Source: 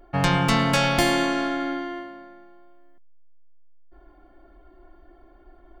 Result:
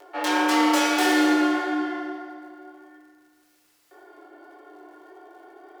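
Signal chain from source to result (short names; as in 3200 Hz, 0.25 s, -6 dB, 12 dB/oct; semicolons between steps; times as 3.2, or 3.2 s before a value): self-modulated delay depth 0.19 ms; steep high-pass 300 Hz 48 dB/oct; upward compressor, threshold -38 dBFS; frequency shift +25 Hz; vibrato 0.39 Hz 13 cents; chorus 1.7 Hz, delay 19.5 ms, depth 6.7 ms; crackle 140/s -54 dBFS; FDN reverb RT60 2.1 s, low-frequency decay 0.95×, high-frequency decay 0.65×, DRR -0.5 dB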